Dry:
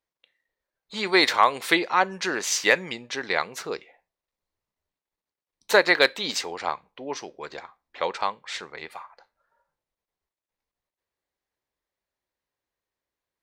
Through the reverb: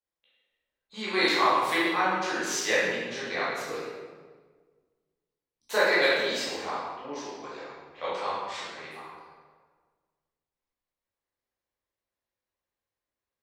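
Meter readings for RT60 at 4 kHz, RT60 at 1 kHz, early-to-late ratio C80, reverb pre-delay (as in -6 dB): 1.0 s, 1.4 s, 1.0 dB, 12 ms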